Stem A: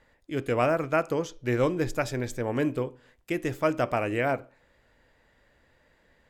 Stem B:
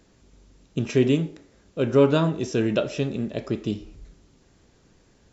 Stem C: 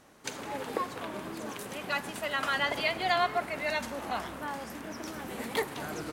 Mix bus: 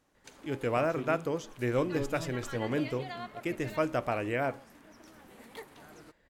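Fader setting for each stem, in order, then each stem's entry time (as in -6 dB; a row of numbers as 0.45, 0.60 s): -4.5, -20.0, -15.0 dB; 0.15, 0.00, 0.00 s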